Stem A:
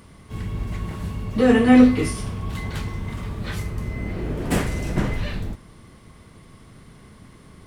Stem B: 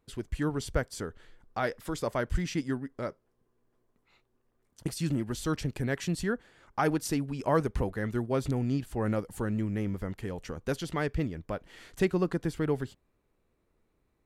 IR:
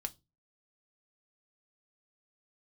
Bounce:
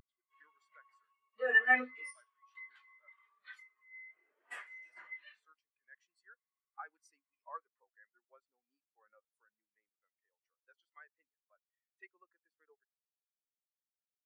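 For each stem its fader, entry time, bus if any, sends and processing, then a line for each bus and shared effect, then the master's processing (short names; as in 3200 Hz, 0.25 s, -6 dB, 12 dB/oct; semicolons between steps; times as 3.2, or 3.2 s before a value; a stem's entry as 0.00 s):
0.0 dB, 0.00 s, no send, dry
-4.0 dB, 0.00 s, no send, dry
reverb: off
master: HPF 1200 Hz 12 dB/oct; vocal rider within 4 dB 2 s; spectral expander 2.5:1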